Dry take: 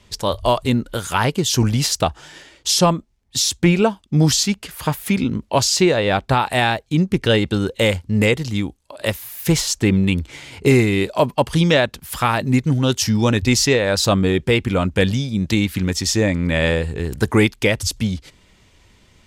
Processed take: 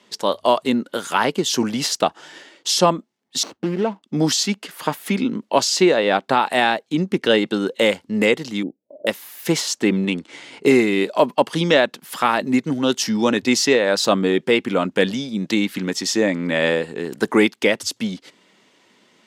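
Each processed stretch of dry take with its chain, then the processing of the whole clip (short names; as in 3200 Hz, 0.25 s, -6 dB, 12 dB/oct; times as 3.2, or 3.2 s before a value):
3.43–4.03 median filter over 25 samples + high shelf 8100 Hz -12 dB + compressor 4:1, threshold -16 dBFS
8.63–9.07 elliptic low-pass 630 Hz, stop band 60 dB + three-band expander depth 40%
10.05–10.62 half-wave gain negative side -3 dB + HPF 55 Hz + careless resampling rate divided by 2×, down none, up filtered
whole clip: HPF 210 Hz 24 dB/oct; high shelf 6700 Hz -8 dB; notch 2400 Hz, Q 22; gain +1 dB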